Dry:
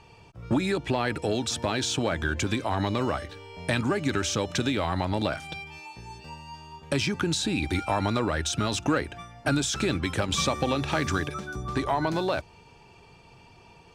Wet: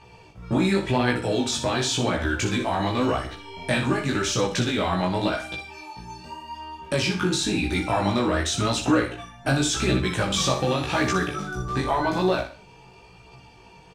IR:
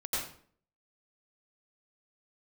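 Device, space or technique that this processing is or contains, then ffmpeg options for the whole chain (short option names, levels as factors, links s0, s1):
double-tracked vocal: -filter_complex "[0:a]asplit=2[s0][s1];[s1]adelay=16,volume=0.708[s2];[s0][s2]amix=inputs=2:normalize=0,aecho=1:1:61|122|183|244:0.398|0.127|0.0408|0.013,flanger=delay=16:depth=6.3:speed=0.9,volume=1.58"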